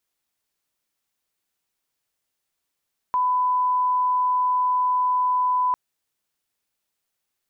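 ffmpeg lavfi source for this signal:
ffmpeg -f lavfi -i "sine=frequency=1000:duration=2.6:sample_rate=44100,volume=0.06dB" out.wav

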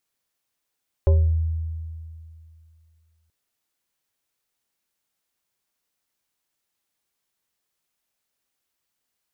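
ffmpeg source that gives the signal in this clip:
ffmpeg -f lavfi -i "aevalsrc='0.266*pow(10,-3*t/2.47)*sin(2*PI*80.8*t+0.57*pow(10,-3*t/0.48)*sin(2*PI*5.84*80.8*t))':duration=2.23:sample_rate=44100" out.wav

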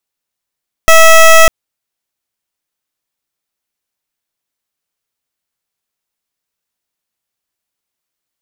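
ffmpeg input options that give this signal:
ffmpeg -f lavfi -i "aevalsrc='0.708*(2*lt(mod(650*t,1),0.15)-1)':duration=0.6:sample_rate=44100" out.wav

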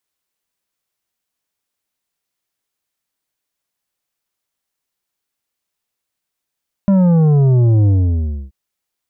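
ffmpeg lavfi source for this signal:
ffmpeg -f lavfi -i "aevalsrc='0.335*clip((1.63-t)/0.64,0,1)*tanh(2.66*sin(2*PI*200*1.63/log(65/200)*(exp(log(65/200)*t/1.63)-1)))/tanh(2.66)':duration=1.63:sample_rate=44100" out.wav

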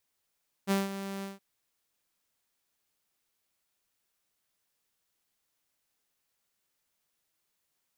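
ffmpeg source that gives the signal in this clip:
ffmpeg -f lavfi -i "aevalsrc='0.0891*(2*mod(196*t,1)-1)':duration=0.721:sample_rate=44100,afade=type=in:duration=0.04,afade=type=out:start_time=0.04:duration=0.172:silence=0.251,afade=type=out:start_time=0.56:duration=0.161" out.wav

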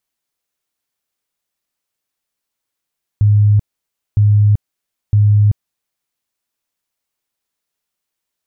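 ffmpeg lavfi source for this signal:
ffmpeg -f lavfi -i "aevalsrc='0.447*sin(2*PI*104*mod(t,0.96))*lt(mod(t,0.96),40/104)':duration=2.88:sample_rate=44100" out.wav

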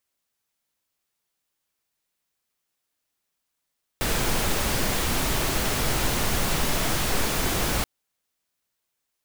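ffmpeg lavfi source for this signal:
ffmpeg -f lavfi -i "anoisesrc=color=pink:amplitude=0.324:duration=3.83:sample_rate=44100:seed=1" out.wav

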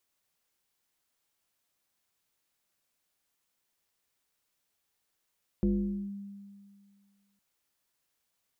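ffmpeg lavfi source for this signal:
ffmpeg -f lavfi -i "aevalsrc='0.0794*pow(10,-3*t/2.02)*sin(2*PI*200*t+0.92*clip(1-t/0.49,0,1)*sin(2*PI*0.75*200*t))':duration=1.76:sample_rate=44100" out.wav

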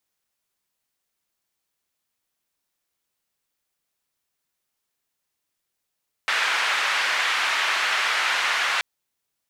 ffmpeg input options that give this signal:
ffmpeg -f lavfi -i "anoisesrc=color=white:duration=2.53:sample_rate=44100:seed=1,highpass=frequency=1400,lowpass=frequency=1900,volume=-3.7dB" out.wav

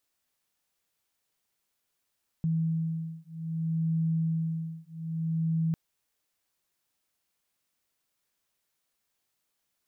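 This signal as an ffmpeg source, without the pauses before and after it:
ffmpeg -f lavfi -i "aevalsrc='0.0316*(sin(2*PI*162*t)+sin(2*PI*162.62*t))':duration=3.3:sample_rate=44100" out.wav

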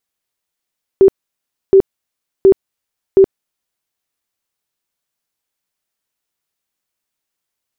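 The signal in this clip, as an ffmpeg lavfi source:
ffmpeg -f lavfi -i "aevalsrc='0.708*sin(2*PI*387*mod(t,0.72))*lt(mod(t,0.72),28/387)':duration=2.88:sample_rate=44100" out.wav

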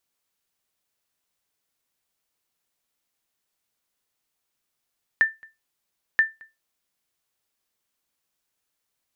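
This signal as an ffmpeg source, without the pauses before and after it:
ffmpeg -f lavfi -i "aevalsrc='0.316*(sin(2*PI*1780*mod(t,0.98))*exp(-6.91*mod(t,0.98)/0.21)+0.0422*sin(2*PI*1780*max(mod(t,0.98)-0.22,0))*exp(-6.91*max(mod(t,0.98)-0.22,0)/0.21))':duration=1.96:sample_rate=44100" out.wav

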